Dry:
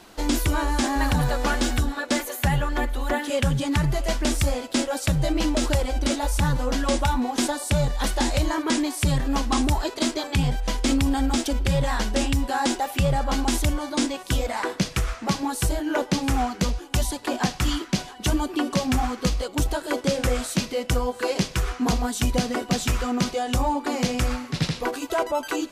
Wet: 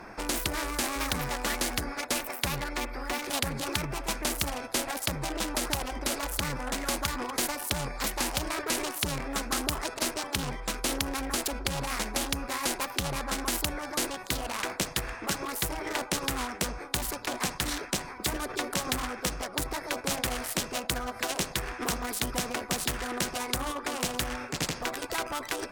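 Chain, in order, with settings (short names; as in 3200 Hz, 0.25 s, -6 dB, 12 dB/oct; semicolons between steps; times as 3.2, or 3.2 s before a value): Wiener smoothing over 15 samples; formant shift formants +4 st; spectral compressor 2:1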